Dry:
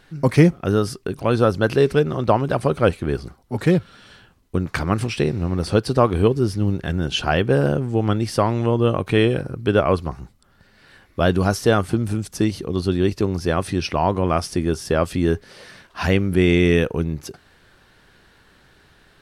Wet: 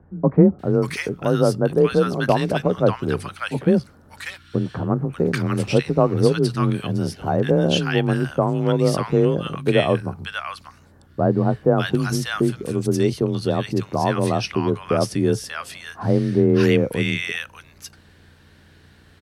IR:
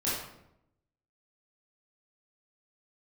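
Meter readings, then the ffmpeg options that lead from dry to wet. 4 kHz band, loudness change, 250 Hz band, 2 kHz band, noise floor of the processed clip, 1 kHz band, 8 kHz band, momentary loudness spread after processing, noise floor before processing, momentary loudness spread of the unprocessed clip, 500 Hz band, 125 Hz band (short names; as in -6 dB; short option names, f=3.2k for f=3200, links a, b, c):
0.0 dB, -0.5 dB, +0.5 dB, -1.0 dB, -51 dBFS, -1.5 dB, 0.0 dB, 10 LU, -55 dBFS, 9 LU, 0.0 dB, -0.5 dB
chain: -filter_complex "[0:a]acrossover=split=1100[a][b];[b]adelay=590[c];[a][c]amix=inputs=2:normalize=0,aeval=exprs='val(0)+0.00251*(sin(2*PI*60*n/s)+sin(2*PI*2*60*n/s)/2+sin(2*PI*3*60*n/s)/3+sin(2*PI*4*60*n/s)/4+sin(2*PI*5*60*n/s)/5)':c=same,afreqshift=26"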